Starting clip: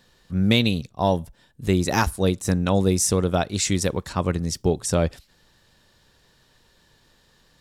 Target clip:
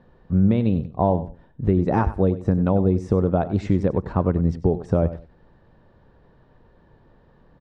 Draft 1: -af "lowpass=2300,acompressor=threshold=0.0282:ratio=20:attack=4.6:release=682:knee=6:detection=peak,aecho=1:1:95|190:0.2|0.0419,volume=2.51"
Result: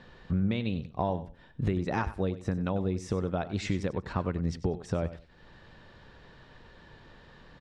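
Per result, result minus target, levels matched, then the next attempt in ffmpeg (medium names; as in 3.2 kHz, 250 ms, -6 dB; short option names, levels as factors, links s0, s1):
compression: peak gain reduction +11 dB; 2 kHz band +10.0 dB
-af "lowpass=2300,acompressor=threshold=0.106:ratio=20:attack=4.6:release=682:knee=6:detection=peak,aecho=1:1:95|190:0.2|0.0419,volume=2.51"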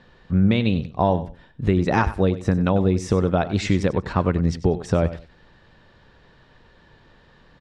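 2 kHz band +9.5 dB
-af "lowpass=910,acompressor=threshold=0.106:ratio=20:attack=4.6:release=682:knee=6:detection=peak,aecho=1:1:95|190:0.2|0.0419,volume=2.51"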